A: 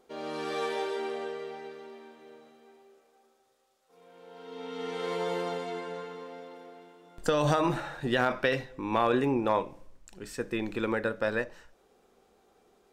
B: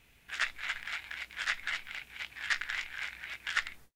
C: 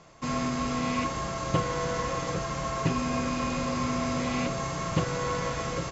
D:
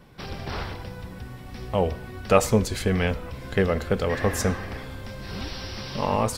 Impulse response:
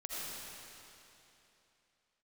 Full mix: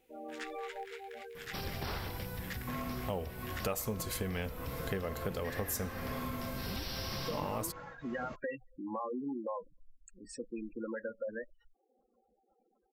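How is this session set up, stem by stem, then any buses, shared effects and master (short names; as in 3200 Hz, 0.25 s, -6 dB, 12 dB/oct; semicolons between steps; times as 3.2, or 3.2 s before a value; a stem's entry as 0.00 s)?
-8.0 dB, 0.00 s, no send, reverb removal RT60 0.54 s; spectral gate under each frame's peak -10 dB strong; comb 3.7 ms
-14.0 dB, 0.00 s, no send, dry
-6.0 dB, 2.45 s, no send, LPF 2700 Hz; tremolo triangle 0.86 Hz, depth 95%
-3.5 dB, 1.35 s, no send, bell 13000 Hz +11.5 dB 0.32 oct; short-mantissa float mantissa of 6-bit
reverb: off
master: high shelf 7900 Hz +11.5 dB; compressor 4:1, threshold -35 dBFS, peak gain reduction 16.5 dB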